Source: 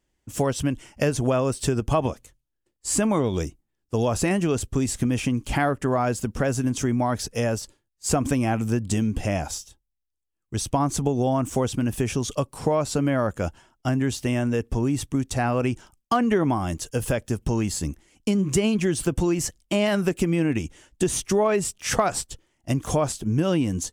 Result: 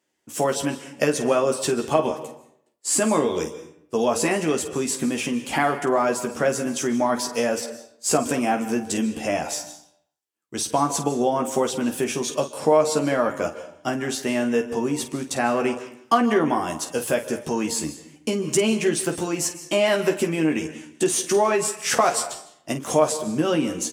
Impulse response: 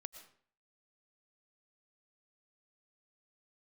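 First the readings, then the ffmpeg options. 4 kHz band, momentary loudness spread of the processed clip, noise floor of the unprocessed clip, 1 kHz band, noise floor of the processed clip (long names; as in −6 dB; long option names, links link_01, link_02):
+4.0 dB, 9 LU, −79 dBFS, +4.0 dB, −62 dBFS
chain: -filter_complex "[0:a]highpass=280,aecho=1:1:13|50:0.596|0.282,asplit=2[link_01][link_02];[1:a]atrim=start_sample=2205,asetrate=33075,aresample=44100[link_03];[link_02][link_03]afir=irnorm=-1:irlink=0,volume=7.5dB[link_04];[link_01][link_04]amix=inputs=2:normalize=0,volume=-6dB"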